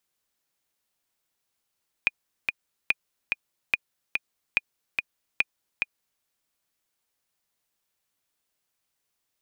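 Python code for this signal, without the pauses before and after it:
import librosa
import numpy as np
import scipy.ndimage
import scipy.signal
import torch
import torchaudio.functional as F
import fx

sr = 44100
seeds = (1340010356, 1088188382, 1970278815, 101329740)

y = fx.click_track(sr, bpm=144, beats=2, bars=5, hz=2450.0, accent_db=4.0, level_db=-7.5)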